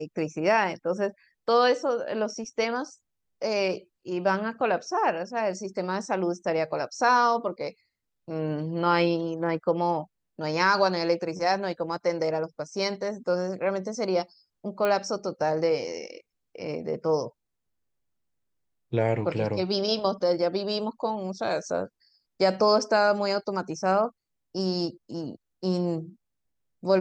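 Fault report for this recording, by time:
0:14.85: click −14 dBFS

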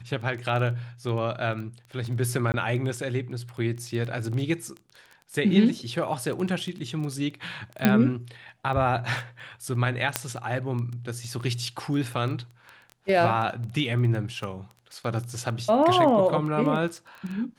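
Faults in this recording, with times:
surface crackle 11 per second −31 dBFS
0:02.52–0:02.54: drop-out 19 ms
0:07.85: click −6 dBFS
0:10.16: click −5 dBFS

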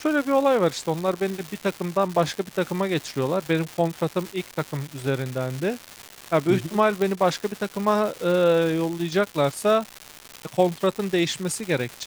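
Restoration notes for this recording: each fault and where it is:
surface crackle 380 per second −27 dBFS
0:07.02: click −12 dBFS

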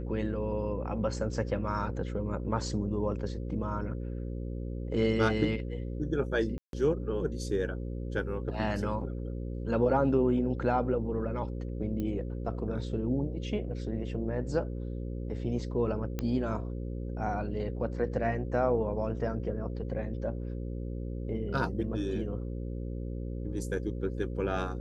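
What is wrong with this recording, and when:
mains buzz 60 Hz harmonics 9 −36 dBFS
0:06.58–0:06.73: drop-out 152 ms
0:12.00: click −23 dBFS
0:16.19: click −19 dBFS

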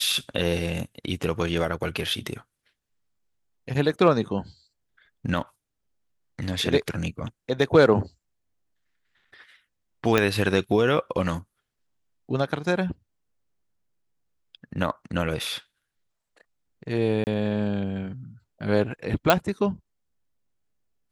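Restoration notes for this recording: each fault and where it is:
0:10.18: click −6 dBFS
0:17.24–0:17.27: drop-out 29 ms
0:19.30: click

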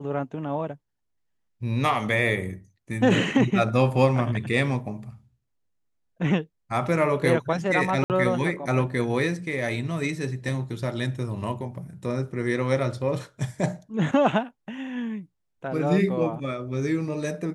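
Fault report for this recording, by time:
0:08.04–0:08.10: drop-out 58 ms

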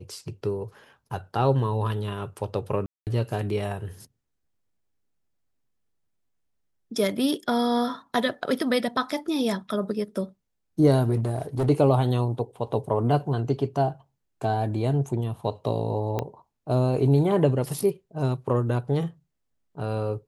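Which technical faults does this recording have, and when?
0:02.86–0:03.07: drop-out 208 ms
0:11.15–0:11.70: clipping −20.5 dBFS
0:16.19: click −14 dBFS

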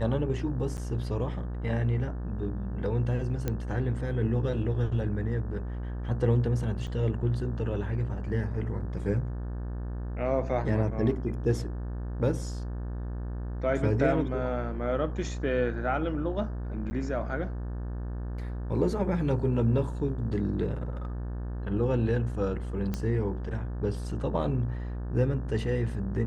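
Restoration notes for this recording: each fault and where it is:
mains buzz 60 Hz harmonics 30 −34 dBFS
0:00.77–0:00.78: drop-out 9.2 ms
0:03.48: click −16 dBFS
0:06.87–0:06.88: drop-out 5.4 ms
0:16.90–0:16.91: drop-out 10 ms
0:22.94: click −18 dBFS

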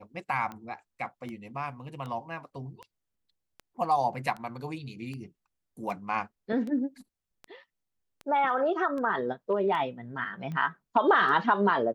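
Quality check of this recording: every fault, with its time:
scratch tick 78 rpm −27 dBFS

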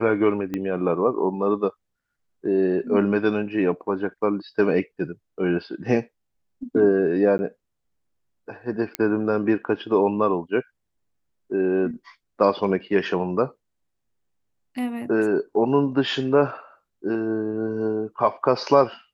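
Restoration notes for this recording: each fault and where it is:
0:00.54: click −15 dBFS
0:07.38–0:07.39: drop-out 10 ms
0:08.95: click −9 dBFS

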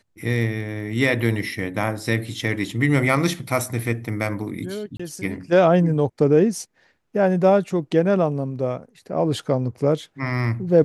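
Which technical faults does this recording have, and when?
0:04.97–0:05.00: drop-out 25 ms

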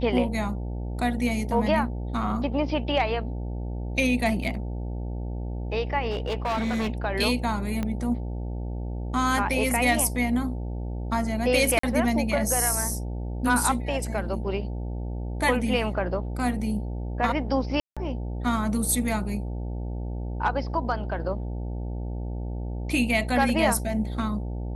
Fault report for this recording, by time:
mains buzz 60 Hz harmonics 15 −31 dBFS
0:04.44: drop-out 4 ms
0:06.10–0:06.90: clipping −23 dBFS
0:07.83: click −16 dBFS
0:11.79–0:11.83: drop-out 44 ms
0:17.80–0:17.97: drop-out 166 ms

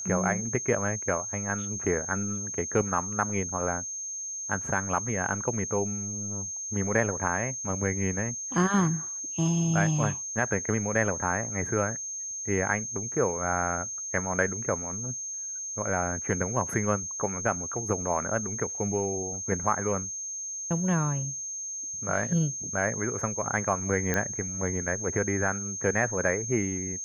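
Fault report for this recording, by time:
whistle 6,400 Hz −33 dBFS
0:24.14: click −12 dBFS

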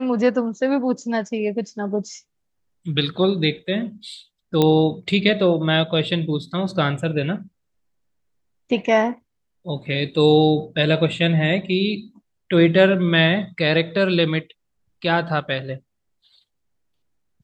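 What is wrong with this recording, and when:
0:04.62: click −6 dBFS

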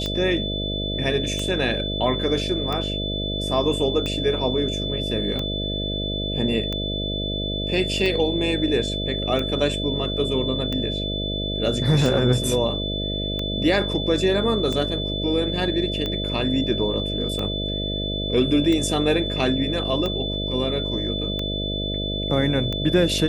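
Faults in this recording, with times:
mains buzz 50 Hz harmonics 13 −28 dBFS
scratch tick 45 rpm −14 dBFS
whistle 3,500 Hz −28 dBFS

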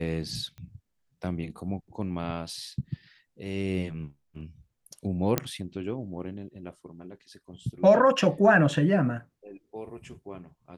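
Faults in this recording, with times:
0:00.58: click −33 dBFS
0:05.38: click −8 dBFS

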